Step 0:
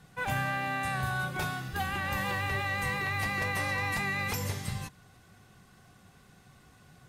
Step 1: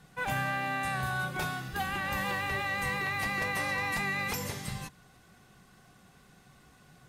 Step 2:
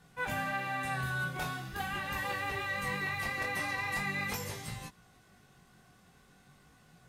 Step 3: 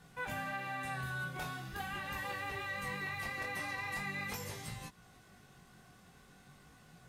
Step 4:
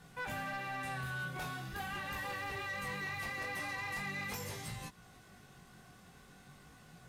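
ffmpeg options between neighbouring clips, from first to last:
ffmpeg -i in.wav -af "equalizer=frequency=95:width_type=o:width=0.44:gain=-9.5" out.wav
ffmpeg -i in.wav -af "flanger=delay=17.5:depth=6.1:speed=0.42" out.wav
ffmpeg -i in.wav -af "acompressor=threshold=-50dB:ratio=1.5,volume=1.5dB" out.wav
ffmpeg -i in.wav -af "asoftclip=type=tanh:threshold=-36dB,volume=2dB" out.wav

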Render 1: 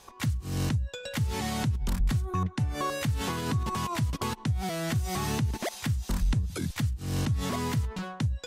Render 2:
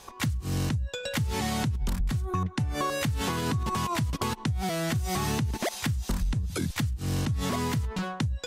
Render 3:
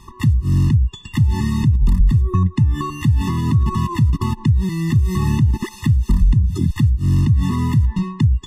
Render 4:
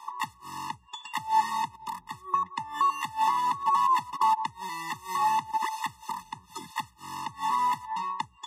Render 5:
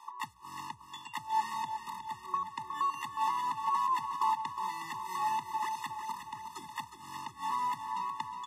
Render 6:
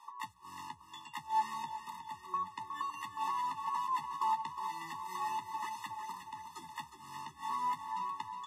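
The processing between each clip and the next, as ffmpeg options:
ffmpeg -i in.wav -af "acompressor=threshold=-29dB:ratio=6,volume=4.5dB" out.wav
ffmpeg -i in.wav -af "bass=frequency=250:gain=11,treble=frequency=4000:gain=-4,afftfilt=real='re*eq(mod(floor(b*sr/1024/420),2),0)':imag='im*eq(mod(floor(b*sr/1024/420),2),0)':win_size=1024:overlap=0.75,volume=4dB" out.wav
ffmpeg -i in.wav -af "highpass=frequency=880:width_type=q:width=6.8,volume=-4.5dB" out.wav
ffmpeg -i in.wav -af "aecho=1:1:363|726|1089|1452|1815|2178|2541:0.376|0.222|0.131|0.0772|0.0455|0.0269|0.0159,volume=-7dB" out.wav
ffmpeg -i in.wav -af "flanger=delay=9.4:depth=4.4:regen=33:speed=0.35:shape=triangular" out.wav

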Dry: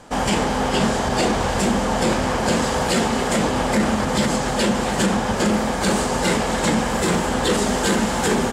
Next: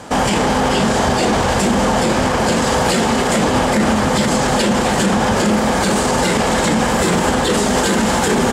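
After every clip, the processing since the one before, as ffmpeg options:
ffmpeg -i in.wav -af "highpass=50,alimiter=level_in=16.5dB:limit=-1dB:release=50:level=0:latency=1,volume=-6dB" out.wav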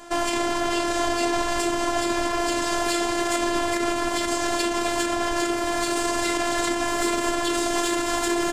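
ffmpeg -i in.wav -af "afftfilt=real='hypot(re,im)*cos(PI*b)':imag='0':win_size=512:overlap=0.75,aeval=exprs='0.841*(cos(1*acos(clip(val(0)/0.841,-1,1)))-cos(1*PI/2))+0.0841*(cos(2*acos(clip(val(0)/0.841,-1,1)))-cos(2*PI/2))':channel_layout=same,volume=-4.5dB" out.wav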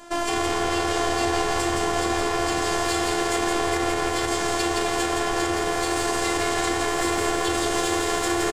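ffmpeg -i in.wav -filter_complex "[0:a]asplit=6[link_01][link_02][link_03][link_04][link_05][link_06];[link_02]adelay=168,afreqshift=80,volume=-3.5dB[link_07];[link_03]adelay=336,afreqshift=160,volume=-12.6dB[link_08];[link_04]adelay=504,afreqshift=240,volume=-21.7dB[link_09];[link_05]adelay=672,afreqshift=320,volume=-30.9dB[link_10];[link_06]adelay=840,afreqshift=400,volume=-40dB[link_11];[link_01][link_07][link_08][link_09][link_10][link_11]amix=inputs=6:normalize=0,volume=-1.5dB" out.wav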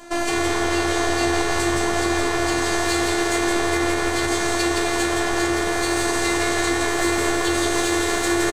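ffmpeg -i in.wav -filter_complex "[0:a]asplit=2[link_01][link_02];[link_02]adelay=15,volume=-5dB[link_03];[link_01][link_03]amix=inputs=2:normalize=0,volume=2dB" out.wav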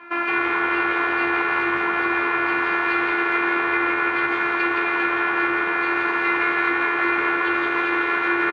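ffmpeg -i in.wav -af "highpass=230,equalizer=frequency=260:width_type=q:width=4:gain=-5,equalizer=frequency=420:width_type=q:width=4:gain=-4,equalizer=frequency=670:width_type=q:width=4:gain=-10,equalizer=frequency=960:width_type=q:width=4:gain=5,equalizer=frequency=1400:width_type=q:width=4:gain=10,equalizer=frequency=2400:width_type=q:width=4:gain=10,lowpass=frequency=2600:width=0.5412,lowpass=frequency=2600:width=1.3066,volume=-1dB" out.wav

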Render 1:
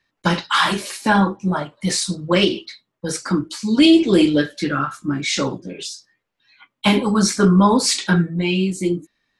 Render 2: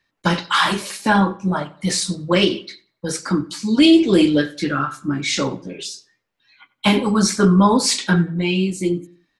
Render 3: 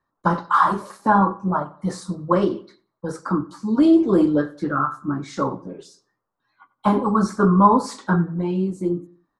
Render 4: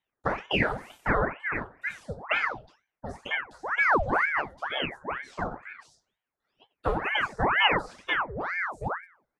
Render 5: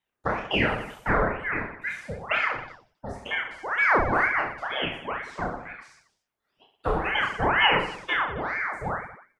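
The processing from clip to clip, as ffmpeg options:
ffmpeg -i in.wav -filter_complex "[0:a]asplit=2[link_01][link_02];[link_02]adelay=92,lowpass=frequency=3400:poles=1,volume=-19.5dB,asplit=2[link_03][link_04];[link_04]adelay=92,lowpass=frequency=3400:poles=1,volume=0.33,asplit=2[link_05][link_06];[link_06]adelay=92,lowpass=frequency=3400:poles=1,volume=0.33[link_07];[link_01][link_03][link_05][link_07]amix=inputs=4:normalize=0" out.wav
ffmpeg -i in.wav -af "highshelf=frequency=1700:width_type=q:width=3:gain=-13.5,volume=-3dB" out.wav
ffmpeg -i in.wav -filter_complex "[0:a]acrossover=split=3500[link_01][link_02];[link_02]acompressor=threshold=-48dB:ratio=4:attack=1:release=60[link_03];[link_01][link_03]amix=inputs=2:normalize=0,aeval=exprs='val(0)*sin(2*PI*1100*n/s+1100*0.8/2.1*sin(2*PI*2.1*n/s))':channel_layout=same,volume=-6dB" out.wav
ffmpeg -i in.wav -af "aecho=1:1:30|69|119.7|185.6|271.3:0.631|0.398|0.251|0.158|0.1" out.wav

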